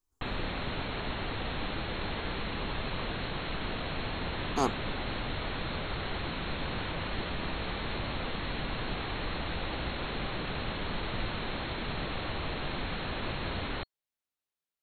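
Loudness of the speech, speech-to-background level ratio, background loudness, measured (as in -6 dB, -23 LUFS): -33.5 LUFS, 2.0 dB, -35.5 LUFS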